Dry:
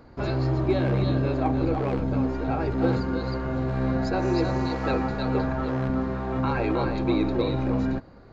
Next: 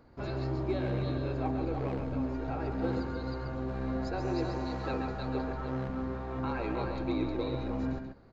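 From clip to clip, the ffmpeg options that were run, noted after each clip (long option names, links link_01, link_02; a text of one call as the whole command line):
ffmpeg -i in.wav -af "aecho=1:1:135:0.473,volume=-9dB" out.wav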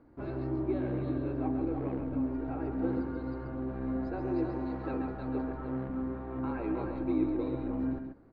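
ffmpeg -i in.wav -af "lowpass=2100,equalizer=frequency=300:width=3:gain=10.5,volume=-4dB" out.wav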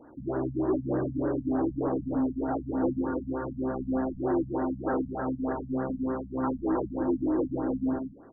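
ffmpeg -i in.wav -filter_complex "[0:a]asplit=2[link_01][link_02];[link_02]highpass=frequency=720:poles=1,volume=20dB,asoftclip=type=tanh:threshold=-17.5dB[link_03];[link_01][link_03]amix=inputs=2:normalize=0,lowpass=frequency=2600:poles=1,volume=-6dB,afftfilt=real='re*lt(b*sr/1024,230*pow(2000/230,0.5+0.5*sin(2*PI*3.3*pts/sr)))':imag='im*lt(b*sr/1024,230*pow(2000/230,0.5+0.5*sin(2*PI*3.3*pts/sr)))':win_size=1024:overlap=0.75,volume=1dB" out.wav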